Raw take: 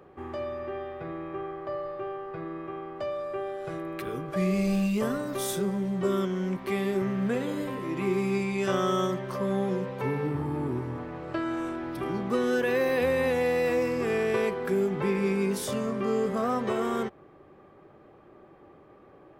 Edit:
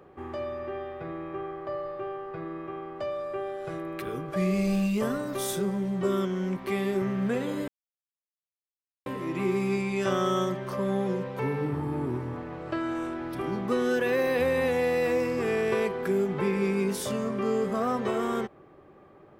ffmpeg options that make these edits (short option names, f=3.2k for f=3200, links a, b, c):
-filter_complex "[0:a]asplit=2[a][b];[a]atrim=end=7.68,asetpts=PTS-STARTPTS,afade=t=out:st=7.676:d=0.004:c=hsin,apad=pad_dur=1.38[c];[b]atrim=start=7.68,asetpts=PTS-STARTPTS,afade=t=in:d=0.004:c=hsin[d];[c][d]concat=n=2:v=0:a=1"